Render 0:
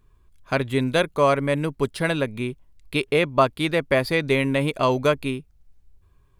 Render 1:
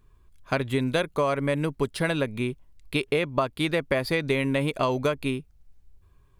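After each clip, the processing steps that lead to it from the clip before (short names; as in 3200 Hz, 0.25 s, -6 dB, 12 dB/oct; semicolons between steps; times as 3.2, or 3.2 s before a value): compressor 10:1, threshold -20 dBFS, peak gain reduction 9 dB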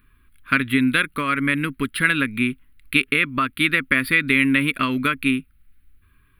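EQ curve 170 Hz 0 dB, 260 Hz +10 dB, 370 Hz -3 dB, 790 Hz -16 dB, 1300 Hz +12 dB, 2400 Hz +13 dB, 4200 Hz +3 dB, 6300 Hz -18 dB, 10000 Hz +11 dB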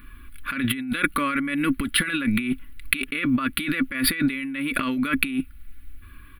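comb 3.5 ms, depth 51%; negative-ratio compressor -28 dBFS, ratio -1; gain +3 dB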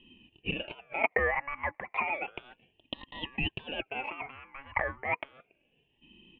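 Chebyshev band-pass 450–1700 Hz, order 4; ring modulator with a swept carrier 1000 Hz, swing 45%, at 0.32 Hz; gain +2 dB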